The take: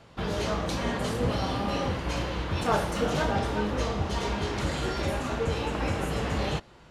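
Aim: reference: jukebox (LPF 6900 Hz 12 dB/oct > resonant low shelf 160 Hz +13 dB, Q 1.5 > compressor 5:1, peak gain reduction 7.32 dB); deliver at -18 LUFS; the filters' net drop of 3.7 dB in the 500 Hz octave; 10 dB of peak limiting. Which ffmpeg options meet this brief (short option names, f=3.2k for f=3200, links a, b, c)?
-af "equalizer=f=500:t=o:g=-3,alimiter=limit=-22dB:level=0:latency=1,lowpass=6.9k,lowshelf=f=160:t=q:w=1.5:g=13,acompressor=threshold=-20dB:ratio=5,volume=8.5dB"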